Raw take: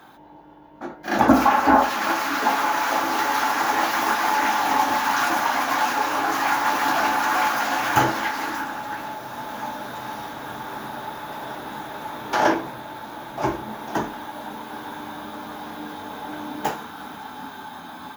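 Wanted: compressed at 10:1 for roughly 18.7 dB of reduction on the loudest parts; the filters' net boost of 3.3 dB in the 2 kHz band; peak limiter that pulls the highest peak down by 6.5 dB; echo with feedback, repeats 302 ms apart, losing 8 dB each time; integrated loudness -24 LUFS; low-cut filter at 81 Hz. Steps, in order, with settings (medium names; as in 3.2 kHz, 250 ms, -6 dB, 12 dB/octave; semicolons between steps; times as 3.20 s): high-pass 81 Hz; peaking EQ 2 kHz +4.5 dB; compression 10:1, threshold -30 dBFS; peak limiter -24.5 dBFS; feedback delay 302 ms, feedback 40%, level -8 dB; trim +9.5 dB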